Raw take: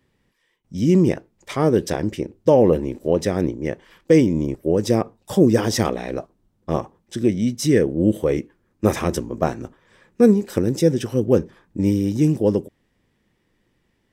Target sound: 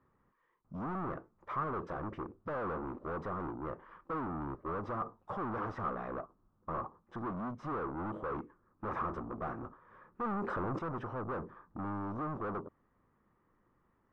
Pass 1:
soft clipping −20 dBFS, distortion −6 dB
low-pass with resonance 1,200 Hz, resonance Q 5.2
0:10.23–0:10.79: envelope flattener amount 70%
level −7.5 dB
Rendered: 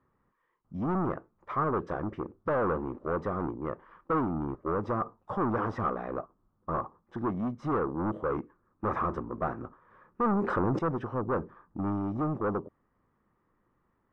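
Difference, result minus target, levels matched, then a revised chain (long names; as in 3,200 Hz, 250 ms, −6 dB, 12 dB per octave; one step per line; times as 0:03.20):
soft clipping: distortion −5 dB
soft clipping −31 dBFS, distortion −1 dB
low-pass with resonance 1,200 Hz, resonance Q 5.2
0:10.23–0:10.79: envelope flattener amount 70%
level −7.5 dB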